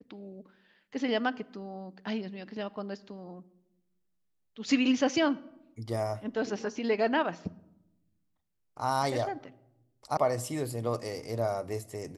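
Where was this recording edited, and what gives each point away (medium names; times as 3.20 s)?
10.17 s: sound stops dead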